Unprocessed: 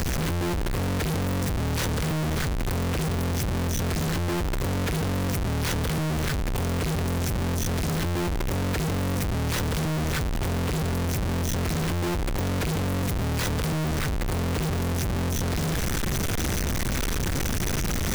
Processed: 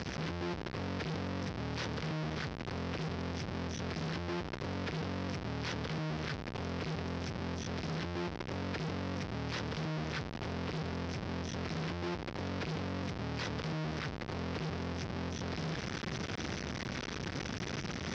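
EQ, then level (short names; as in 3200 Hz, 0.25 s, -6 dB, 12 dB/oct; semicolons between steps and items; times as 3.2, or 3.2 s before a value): HPF 110 Hz 12 dB/oct; Chebyshev low-pass 5400 Hz, order 4; -8.5 dB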